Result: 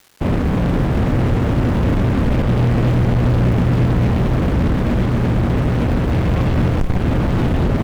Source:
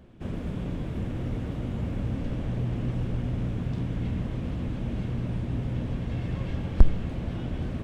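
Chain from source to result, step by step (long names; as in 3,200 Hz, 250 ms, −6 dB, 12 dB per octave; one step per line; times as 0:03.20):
high-shelf EQ 2,300 Hz −12 dB
fuzz pedal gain 36 dB, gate −42 dBFS
surface crackle 540 per second −36 dBFS
on a send: single-tap delay 496 ms −10 dB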